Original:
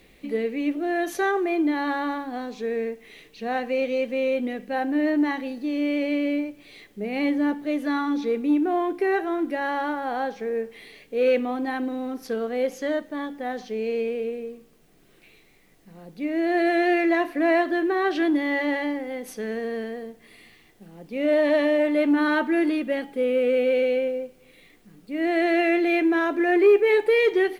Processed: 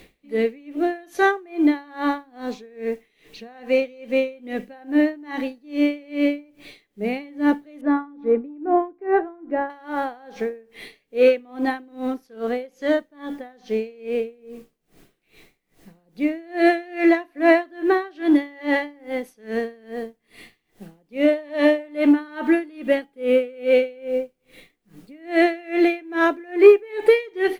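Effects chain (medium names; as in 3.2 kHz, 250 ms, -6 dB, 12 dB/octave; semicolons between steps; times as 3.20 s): 7.81–9.70 s: low-pass 1.2 kHz 12 dB/octave; logarithmic tremolo 2.4 Hz, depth 28 dB; trim +7.5 dB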